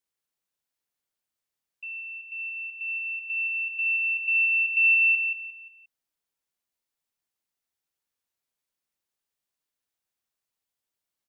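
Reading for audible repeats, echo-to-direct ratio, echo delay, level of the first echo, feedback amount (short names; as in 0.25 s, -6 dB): 3, -7.5 dB, 0.176 s, -8.0 dB, 35%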